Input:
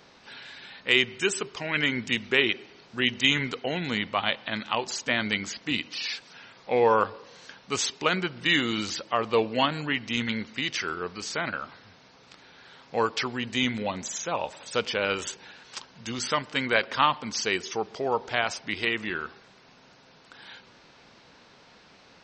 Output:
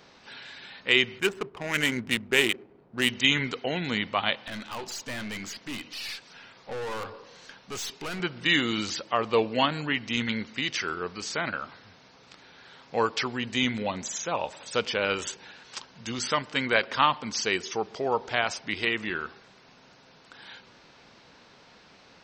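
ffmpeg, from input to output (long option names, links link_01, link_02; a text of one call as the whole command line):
ffmpeg -i in.wav -filter_complex "[0:a]asettb=1/sr,asplit=3[link_01][link_02][link_03];[link_01]atrim=end=1.194[link_04];[link_02]atrim=start=1.19:end=3.09,asetpts=PTS-STARTPTS,afade=type=in:duration=0.004:curve=qsin,afade=type=out:start_time=1.896:duration=0.004:curve=qsin,adynamicsmooth=sensitivity=3.5:basefreq=620[link_05];[link_03]atrim=start=3.086[link_06];[link_04][link_05]acrossfade=duration=0.004:curve1=hsin:curve2=qsin[link_07];[link_07][link_06]acrossfade=duration=0.004:curve1=qsin:curve2=hsin,asettb=1/sr,asplit=3[link_08][link_09][link_10];[link_08]atrim=end=4.474[link_11];[link_09]atrim=start=4.47:end=8.2,asetpts=PTS-STARTPTS,afade=type=in:duration=0.004:curve=qsin,afade=type=out:start_time=3.726:duration=0.004:curve=qsin,aeval=exprs='(tanh(39.8*val(0)+0.3)-tanh(0.3))/39.8':channel_layout=same[link_12];[link_10]atrim=start=8.196[link_13];[link_11][link_12]acrossfade=duration=0.004:curve1=hsin:curve2=qsin[link_14];[link_14][link_13]acrossfade=duration=0.004:curve1=qsin:curve2=hsin" out.wav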